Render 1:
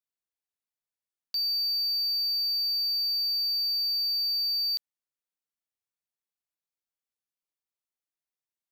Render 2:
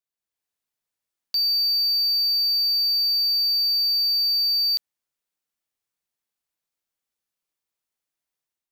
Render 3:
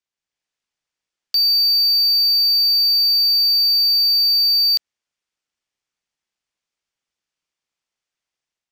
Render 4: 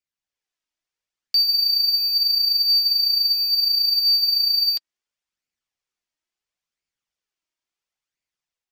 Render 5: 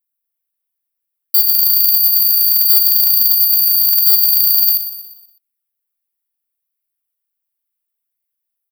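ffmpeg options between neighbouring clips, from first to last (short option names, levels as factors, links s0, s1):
-af "dynaudnorm=f=120:g=5:m=2.11"
-filter_complex "[0:a]equalizer=f=4000:w=4.7:g=-3.5,acrossover=split=1600|3000|7500[s0][s1][s2][s3];[s0]tremolo=f=130:d=0.947[s4];[s3]aeval=exprs='val(0)*gte(abs(val(0)),0.00119)':c=same[s5];[s4][s1][s2][s5]amix=inputs=4:normalize=0,volume=2.24"
-af "flanger=delay=0.4:depth=2.8:regen=46:speed=0.73:shape=sinusoidal"
-filter_complex "[0:a]acrusher=bits=3:mode=log:mix=0:aa=0.000001,aexciter=amount=15.3:drive=5.5:freq=9600,asplit=2[s0][s1];[s1]aecho=0:1:121|242|363|484|605:0.251|0.121|0.0579|0.0278|0.0133[s2];[s0][s2]amix=inputs=2:normalize=0,volume=0.501"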